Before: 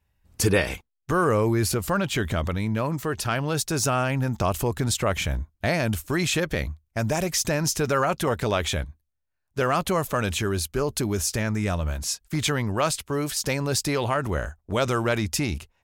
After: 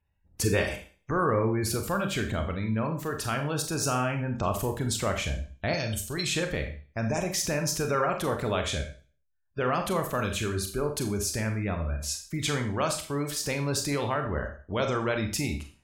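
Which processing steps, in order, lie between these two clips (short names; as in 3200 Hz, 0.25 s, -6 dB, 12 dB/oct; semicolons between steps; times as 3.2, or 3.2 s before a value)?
spectral gate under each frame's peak -30 dB strong; 5.73–6.27 graphic EQ 250/1000/2000/4000/8000 Hz -8/-7/-5/+8/+10 dB; Schroeder reverb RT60 0.41 s, combs from 28 ms, DRR 4.5 dB; gain -5 dB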